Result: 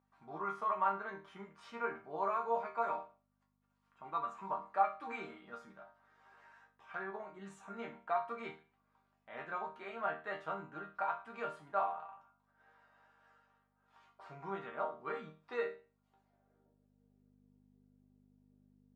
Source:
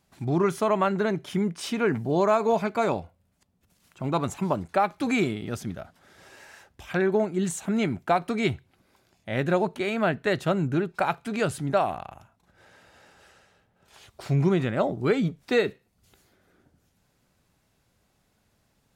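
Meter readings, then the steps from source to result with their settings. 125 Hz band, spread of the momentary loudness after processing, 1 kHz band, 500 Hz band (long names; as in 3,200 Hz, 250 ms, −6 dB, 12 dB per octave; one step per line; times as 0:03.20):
−30.0 dB, 18 LU, −7.5 dB, −16.5 dB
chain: resonators tuned to a chord D#3 major, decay 0.35 s
mains hum 50 Hz, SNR 20 dB
band-pass filter sweep 1,100 Hz → 340 Hz, 0:15.81–0:17.38
level +11 dB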